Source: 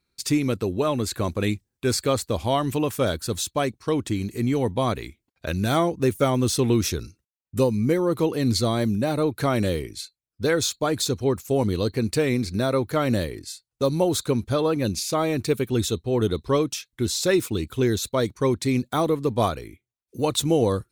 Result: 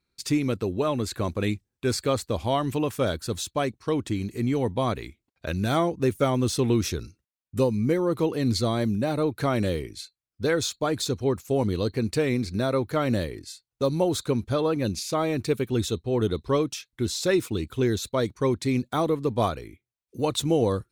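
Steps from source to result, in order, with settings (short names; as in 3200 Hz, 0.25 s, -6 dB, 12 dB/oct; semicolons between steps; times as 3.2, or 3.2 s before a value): high shelf 7200 Hz -6 dB; gain -2 dB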